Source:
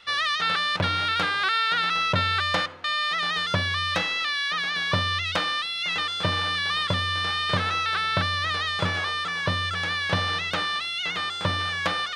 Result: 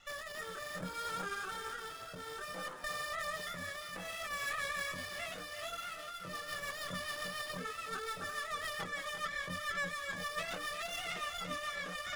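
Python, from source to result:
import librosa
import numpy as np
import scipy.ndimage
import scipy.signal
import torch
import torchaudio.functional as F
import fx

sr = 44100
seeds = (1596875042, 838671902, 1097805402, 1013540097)

y = fx.tracing_dist(x, sr, depth_ms=0.32)
y = scipy.signal.sosfilt(scipy.signal.butter(4, 140.0, 'highpass', fs=sr, output='sos'), y)
y = fx.spec_gate(y, sr, threshold_db=-15, keep='strong')
y = fx.peak_eq(y, sr, hz=1400.0, db=14.5, octaves=0.23, at=(5.68, 6.47))
y = fx.over_compress(y, sr, threshold_db=-31.0, ratio=-1.0)
y = fx.chorus_voices(y, sr, voices=2, hz=0.77, base_ms=24, depth_ms=3.2, mix_pct=45)
y = fx.rotary_switch(y, sr, hz=0.6, then_hz=7.0, switch_at_s=5.59)
y = fx.echo_feedback(y, sr, ms=345, feedback_pct=33, wet_db=-10.0)
y = fx.running_max(y, sr, window=5)
y = F.gain(torch.from_numpy(y), -4.0).numpy()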